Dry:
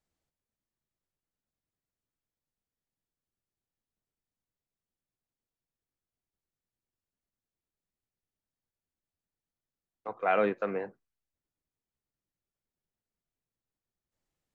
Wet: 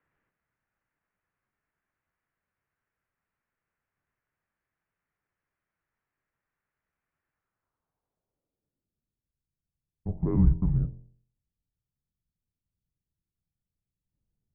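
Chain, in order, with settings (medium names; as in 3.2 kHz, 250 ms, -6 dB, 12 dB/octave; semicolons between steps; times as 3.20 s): de-hum 46.21 Hz, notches 28; in parallel at -2 dB: compression, threshold -37 dBFS, peak gain reduction 14 dB; on the sum: low-pass sweep 2.1 kHz -> 390 Hz, 7.33–9.34 s; mistuned SSB -340 Hz 190–3300 Hz; trim +4 dB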